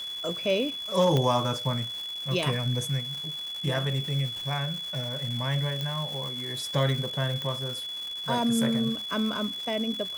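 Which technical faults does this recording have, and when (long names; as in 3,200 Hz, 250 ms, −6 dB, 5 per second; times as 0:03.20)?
surface crackle 560 per second −35 dBFS
whistle 3,400 Hz −33 dBFS
0:01.17: click −13 dBFS
0:05.81: click −18 dBFS
0:07.42: click −20 dBFS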